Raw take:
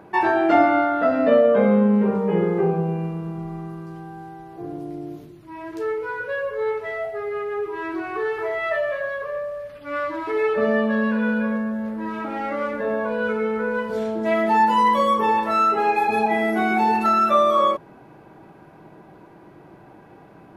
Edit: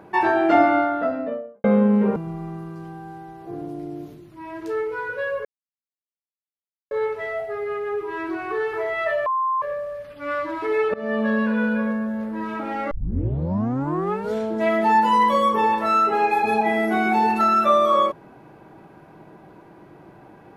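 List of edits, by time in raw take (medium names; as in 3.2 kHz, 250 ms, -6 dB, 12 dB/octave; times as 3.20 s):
0.69–1.64 s: studio fade out
2.16–3.27 s: delete
6.56 s: insert silence 1.46 s
8.91–9.27 s: bleep 1.05 kHz -19 dBFS
10.59–10.90 s: fade in, from -21.5 dB
12.56 s: tape start 1.43 s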